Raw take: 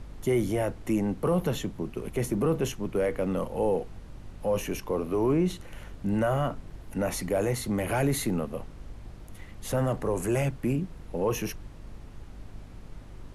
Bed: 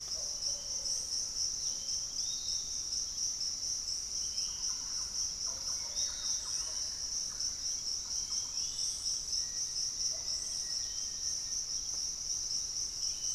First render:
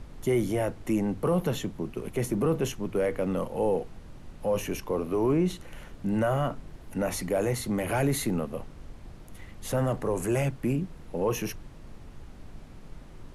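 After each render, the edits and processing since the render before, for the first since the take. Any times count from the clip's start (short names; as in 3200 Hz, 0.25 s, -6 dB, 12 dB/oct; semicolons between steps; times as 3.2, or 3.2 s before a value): de-hum 50 Hz, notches 2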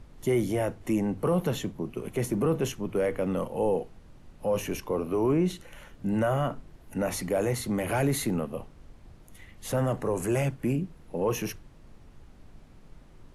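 noise print and reduce 6 dB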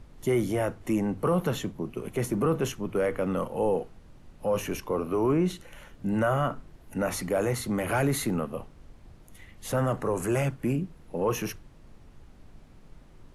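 dynamic EQ 1300 Hz, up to +6 dB, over -49 dBFS, Q 2.4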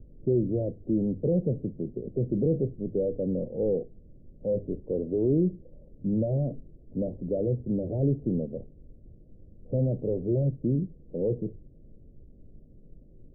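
steep low-pass 570 Hz 48 dB/oct; dynamic EQ 130 Hz, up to +3 dB, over -37 dBFS, Q 1.8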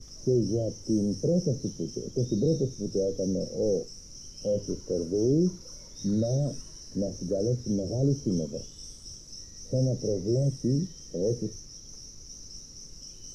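add bed -10 dB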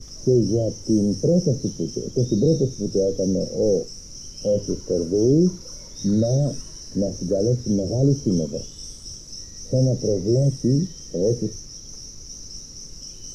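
gain +7 dB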